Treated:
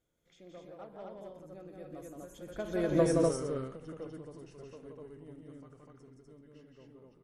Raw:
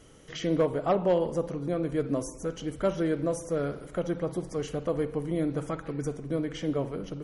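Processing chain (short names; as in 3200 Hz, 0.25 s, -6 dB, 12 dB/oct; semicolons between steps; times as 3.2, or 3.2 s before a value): Doppler pass-by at 2.99, 30 m/s, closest 3.1 m; loudspeakers at several distances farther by 59 m -3 dB, 85 m -1 dB; ending taper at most 150 dB/s; gain +2 dB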